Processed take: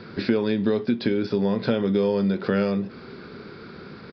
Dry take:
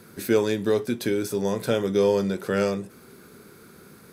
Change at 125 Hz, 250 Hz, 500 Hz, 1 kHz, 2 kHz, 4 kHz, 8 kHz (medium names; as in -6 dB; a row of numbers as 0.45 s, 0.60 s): +3.5 dB, +4.0 dB, -1.5 dB, -1.0 dB, 0.0 dB, 0.0 dB, under -25 dB